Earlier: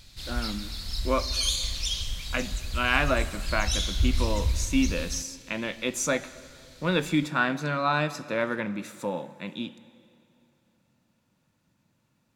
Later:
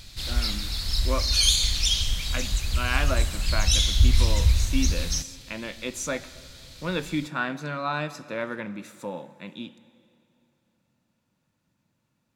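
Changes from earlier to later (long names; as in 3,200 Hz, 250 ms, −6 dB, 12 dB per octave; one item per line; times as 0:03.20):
speech −3.5 dB
background +6.5 dB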